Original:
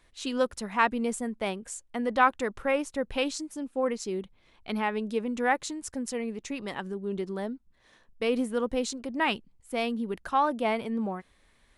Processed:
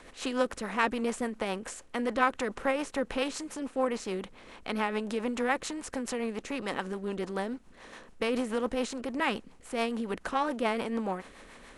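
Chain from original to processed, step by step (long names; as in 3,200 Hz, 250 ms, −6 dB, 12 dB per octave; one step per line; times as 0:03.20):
compressor on every frequency bin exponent 0.6
rotating-speaker cabinet horn 7 Hz
level −3 dB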